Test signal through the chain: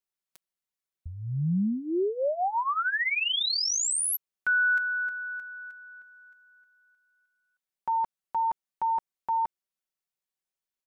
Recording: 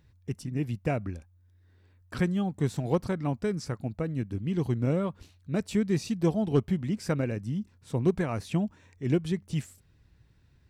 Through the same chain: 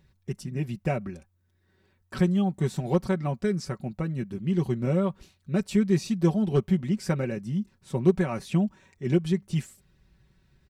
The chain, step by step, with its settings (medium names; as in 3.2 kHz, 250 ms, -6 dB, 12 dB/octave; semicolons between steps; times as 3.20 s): comb 5.3 ms, depth 70%